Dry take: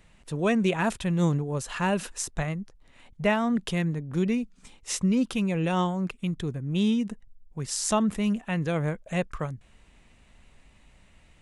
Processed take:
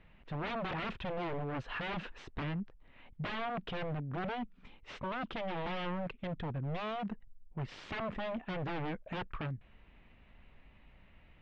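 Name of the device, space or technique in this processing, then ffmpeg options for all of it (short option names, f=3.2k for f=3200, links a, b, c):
synthesiser wavefolder: -af "aeval=exprs='0.0355*(abs(mod(val(0)/0.0355+3,4)-2)-1)':c=same,lowpass=f=3.1k:w=0.5412,lowpass=f=3.1k:w=1.3066,volume=-3dB"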